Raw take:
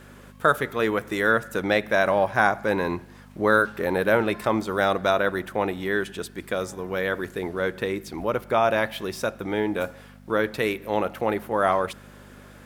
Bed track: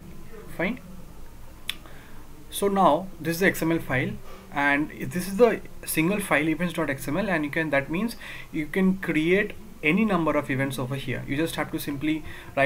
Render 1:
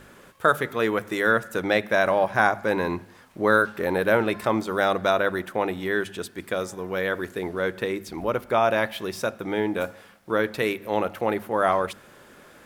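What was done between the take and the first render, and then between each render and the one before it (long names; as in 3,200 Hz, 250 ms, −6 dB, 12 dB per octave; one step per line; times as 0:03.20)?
hum removal 50 Hz, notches 5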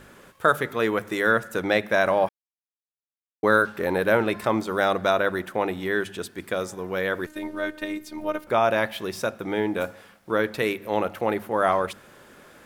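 0:02.29–0:03.43: silence
0:07.26–0:08.47: phases set to zero 306 Hz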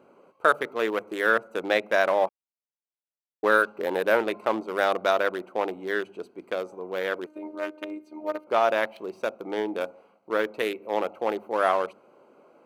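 adaptive Wiener filter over 25 samples
high-pass filter 360 Hz 12 dB per octave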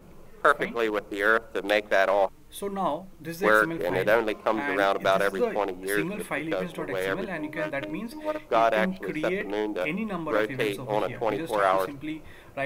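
mix in bed track −8.5 dB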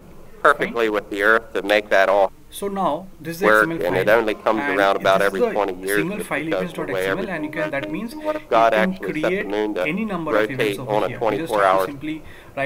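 level +6.5 dB
brickwall limiter −1 dBFS, peak gain reduction 2 dB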